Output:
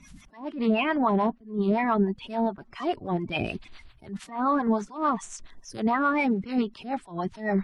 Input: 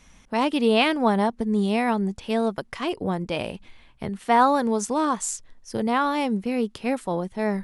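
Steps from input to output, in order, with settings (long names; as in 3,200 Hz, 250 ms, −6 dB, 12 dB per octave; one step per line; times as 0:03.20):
spectral magnitudes quantised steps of 30 dB
parametric band 500 Hz −13.5 dB 0.3 octaves
notch filter 850 Hz, Q 12
treble cut that deepens with the level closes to 1,800 Hz, closed at −22 dBFS
brickwall limiter −19 dBFS, peak gain reduction 10 dB
two-band tremolo in antiphase 7 Hz, depth 70%, crossover 560 Hz
level that may rise only so fast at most 160 dB per second
level +7 dB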